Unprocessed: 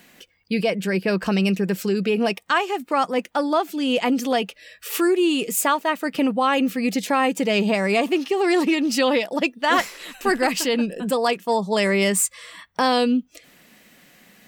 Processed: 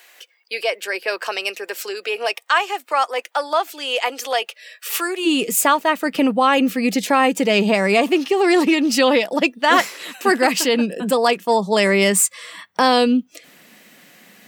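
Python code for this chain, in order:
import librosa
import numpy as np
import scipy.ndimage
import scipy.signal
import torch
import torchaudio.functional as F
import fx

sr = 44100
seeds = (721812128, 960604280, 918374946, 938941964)

y = fx.bessel_highpass(x, sr, hz=fx.steps((0.0, 690.0), (5.25, 170.0)), order=8)
y = y * librosa.db_to_amplitude(4.5)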